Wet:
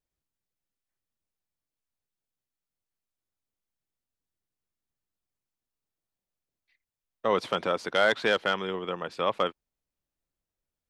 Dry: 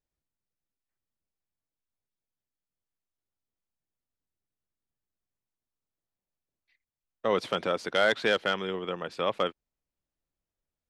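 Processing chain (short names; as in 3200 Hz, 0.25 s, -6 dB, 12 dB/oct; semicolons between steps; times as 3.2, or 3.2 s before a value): dynamic EQ 1000 Hz, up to +4 dB, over -42 dBFS, Q 1.8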